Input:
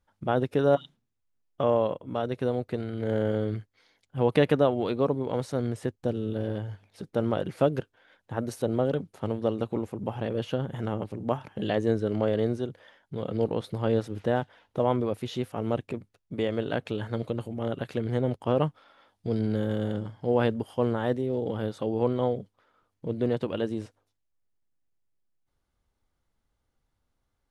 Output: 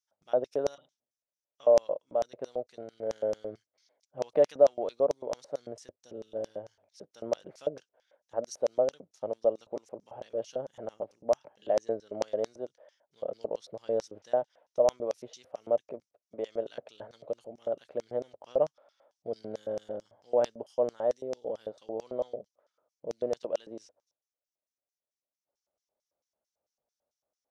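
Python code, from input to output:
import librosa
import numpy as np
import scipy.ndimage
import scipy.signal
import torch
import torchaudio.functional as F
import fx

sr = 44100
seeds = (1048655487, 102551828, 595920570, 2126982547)

y = fx.high_shelf(x, sr, hz=7300.0, db=-11.0, at=(11.21, 12.17))
y = fx.filter_lfo_bandpass(y, sr, shape='square', hz=4.5, low_hz=600.0, high_hz=5800.0, q=5.5)
y = y * 10.0 ** (6.5 / 20.0)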